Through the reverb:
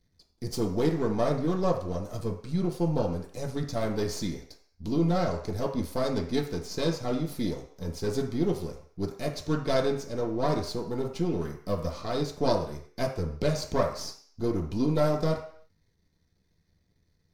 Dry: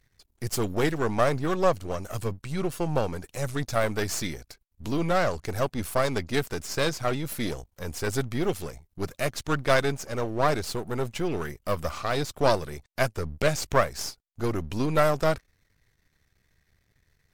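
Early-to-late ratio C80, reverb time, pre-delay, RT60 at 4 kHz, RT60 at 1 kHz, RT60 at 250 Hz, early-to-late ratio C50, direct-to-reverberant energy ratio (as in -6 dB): 11.0 dB, 0.55 s, 3 ms, 0.60 s, 0.55 s, 0.50 s, 7.5 dB, -1.0 dB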